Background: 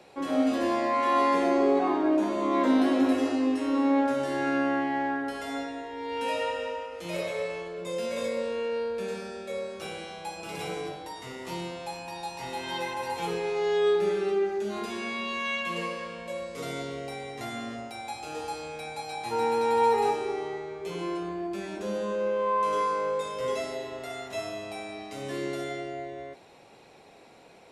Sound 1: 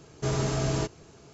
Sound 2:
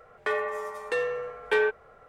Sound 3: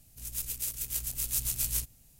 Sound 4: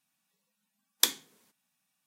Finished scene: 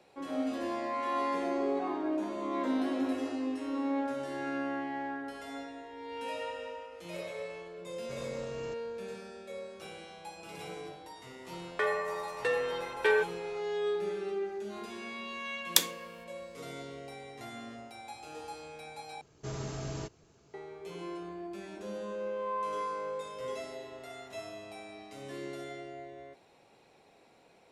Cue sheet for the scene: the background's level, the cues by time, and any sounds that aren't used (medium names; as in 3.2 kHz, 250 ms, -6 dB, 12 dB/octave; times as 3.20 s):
background -8.5 dB
7.87 s: add 1 -11.5 dB + peak limiter -27.5 dBFS
11.53 s: add 2 -2.5 dB
14.73 s: add 4
19.21 s: replace with 1 -11 dB
not used: 3